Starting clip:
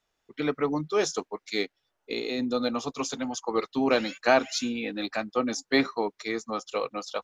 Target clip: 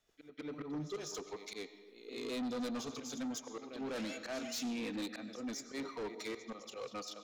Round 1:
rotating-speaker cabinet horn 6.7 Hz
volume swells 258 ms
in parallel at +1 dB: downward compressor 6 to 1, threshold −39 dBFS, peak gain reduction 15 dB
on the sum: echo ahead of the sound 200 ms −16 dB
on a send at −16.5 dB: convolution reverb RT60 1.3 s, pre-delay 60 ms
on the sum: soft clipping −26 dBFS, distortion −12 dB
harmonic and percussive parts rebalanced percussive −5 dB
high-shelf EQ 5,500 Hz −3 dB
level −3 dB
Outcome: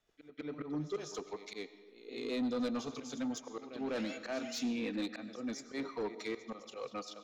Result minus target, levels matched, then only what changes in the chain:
8,000 Hz band −5.0 dB; soft clipping: distortion −5 dB
change: soft clipping −32 dBFS, distortion −7 dB
change: high-shelf EQ 5,500 Hz +5 dB

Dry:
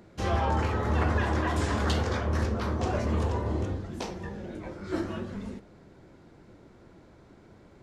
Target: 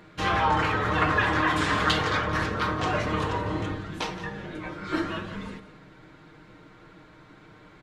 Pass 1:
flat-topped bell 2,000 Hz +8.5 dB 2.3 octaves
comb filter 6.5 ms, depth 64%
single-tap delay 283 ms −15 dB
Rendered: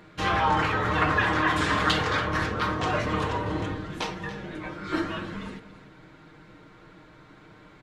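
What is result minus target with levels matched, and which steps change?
echo 110 ms late
change: single-tap delay 173 ms −15 dB

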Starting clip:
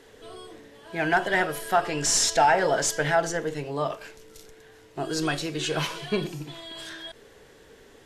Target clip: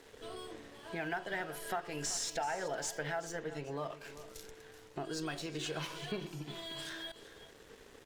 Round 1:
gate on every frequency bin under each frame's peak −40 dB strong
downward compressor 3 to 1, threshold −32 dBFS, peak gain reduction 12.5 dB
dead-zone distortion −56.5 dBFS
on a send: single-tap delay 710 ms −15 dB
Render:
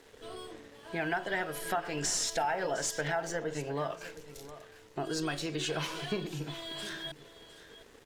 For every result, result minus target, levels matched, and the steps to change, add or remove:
echo 329 ms late; downward compressor: peak gain reduction −5 dB
change: single-tap delay 381 ms −15 dB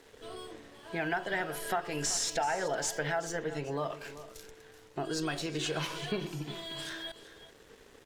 downward compressor: peak gain reduction −5 dB
change: downward compressor 3 to 1, threshold −39.5 dBFS, peak gain reduction 17.5 dB

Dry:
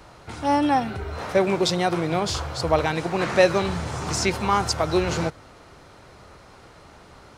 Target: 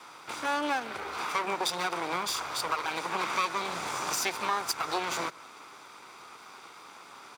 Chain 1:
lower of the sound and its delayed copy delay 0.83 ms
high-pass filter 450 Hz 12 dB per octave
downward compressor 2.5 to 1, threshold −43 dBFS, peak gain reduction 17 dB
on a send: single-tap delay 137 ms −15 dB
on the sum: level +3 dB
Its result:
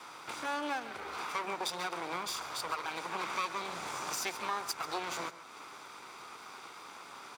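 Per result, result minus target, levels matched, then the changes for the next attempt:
echo-to-direct +11.5 dB; downward compressor: peak gain reduction +6 dB
change: single-tap delay 137 ms −26.5 dB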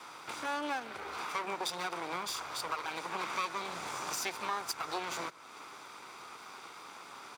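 downward compressor: peak gain reduction +6 dB
change: downward compressor 2.5 to 1, threshold −33 dBFS, peak gain reduction 11 dB

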